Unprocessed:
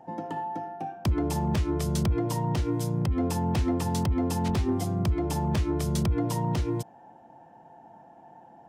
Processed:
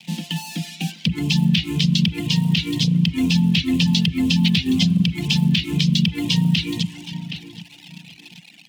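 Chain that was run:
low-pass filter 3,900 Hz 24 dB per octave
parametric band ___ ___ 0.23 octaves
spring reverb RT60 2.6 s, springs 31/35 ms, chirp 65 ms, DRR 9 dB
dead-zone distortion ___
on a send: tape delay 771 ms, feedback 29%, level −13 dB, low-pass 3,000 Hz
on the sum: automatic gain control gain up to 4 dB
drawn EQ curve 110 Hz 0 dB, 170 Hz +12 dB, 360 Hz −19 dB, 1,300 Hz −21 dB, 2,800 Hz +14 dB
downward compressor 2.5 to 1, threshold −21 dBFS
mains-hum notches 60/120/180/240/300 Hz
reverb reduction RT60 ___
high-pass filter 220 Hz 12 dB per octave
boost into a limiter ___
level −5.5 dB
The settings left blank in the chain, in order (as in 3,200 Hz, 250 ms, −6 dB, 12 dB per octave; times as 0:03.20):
610 Hz, −11.5 dB, −54.5 dBFS, 1.3 s, +19.5 dB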